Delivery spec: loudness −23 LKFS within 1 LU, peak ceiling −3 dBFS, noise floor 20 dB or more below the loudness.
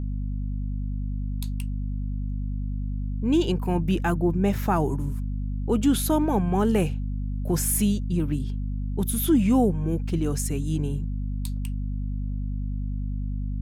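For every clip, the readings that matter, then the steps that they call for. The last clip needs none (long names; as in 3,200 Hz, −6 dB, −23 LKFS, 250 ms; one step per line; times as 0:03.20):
mains hum 50 Hz; hum harmonics up to 250 Hz; level of the hum −26 dBFS; integrated loudness −26.5 LKFS; sample peak −10.5 dBFS; target loudness −23.0 LKFS
→ hum removal 50 Hz, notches 5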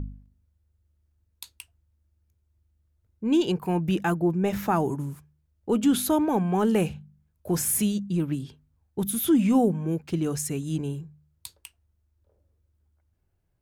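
mains hum none found; integrated loudness −25.5 LKFS; sample peak −12.5 dBFS; target loudness −23.0 LKFS
→ level +2.5 dB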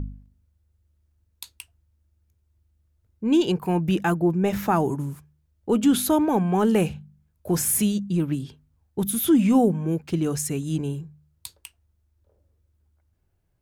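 integrated loudness −23.0 LKFS; sample peak −10.0 dBFS; background noise floor −70 dBFS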